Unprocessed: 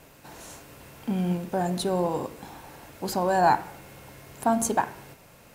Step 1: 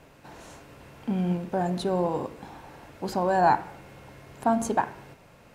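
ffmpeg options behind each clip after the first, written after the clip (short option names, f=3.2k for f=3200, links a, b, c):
-af "aemphasis=mode=reproduction:type=50kf"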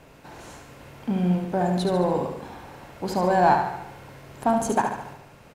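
-filter_complex "[0:a]asplit=2[a][b];[b]volume=23dB,asoftclip=hard,volume=-23dB,volume=-10dB[c];[a][c]amix=inputs=2:normalize=0,aecho=1:1:72|144|216|288|360|432|504:0.501|0.266|0.141|0.0746|0.0395|0.021|0.0111"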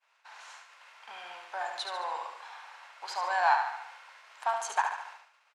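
-af "lowpass=6k,agate=range=-33dB:threshold=-41dB:ratio=3:detection=peak,highpass=f=950:w=0.5412,highpass=f=950:w=1.3066"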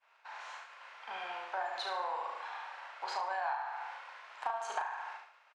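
-filter_complex "[0:a]aemphasis=mode=reproduction:type=75fm,acompressor=threshold=-37dB:ratio=8,asplit=2[a][b];[b]adelay=37,volume=-5dB[c];[a][c]amix=inputs=2:normalize=0,volume=3dB"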